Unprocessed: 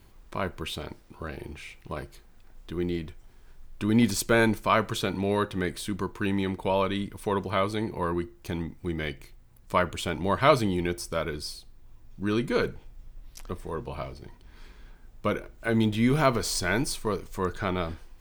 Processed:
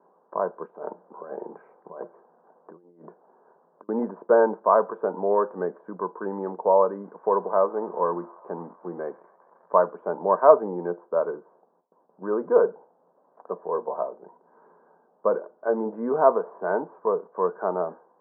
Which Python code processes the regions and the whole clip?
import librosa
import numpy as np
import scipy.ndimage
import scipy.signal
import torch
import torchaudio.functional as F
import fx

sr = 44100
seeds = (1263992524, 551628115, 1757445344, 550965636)

y = fx.chain(x, sr, fx.hum_notches(base_hz=60, count=3),
    fx.over_compress(threshold_db=-38.0, ratio=-0.5), at=(0.63, 3.89))
y = fx.chain(y, sr, fx.crossing_spikes(level_db=-27.0),
    fx.echo_wet_bandpass(ms=137, feedback_pct=80, hz=1500.0, wet_db=-23), at=(7.04, 9.77))
y = fx.chain(y, sr, fx.gate_hold(open_db=-41.0, close_db=-48.0, hold_ms=71.0, range_db=-21, attack_ms=1.4, release_ms=100.0),
    fx.peak_eq(hz=730.0, db=2.5, octaves=1.8), at=(11.52, 14.16))
y = scipy.signal.sosfilt(scipy.signal.cheby1(5, 1.0, [170.0, 1600.0], 'bandpass', fs=sr, output='sos'), y)
y = fx.band_shelf(y, sr, hz=660.0, db=15.0, octaves=1.7)
y = y * 10.0 ** (-7.0 / 20.0)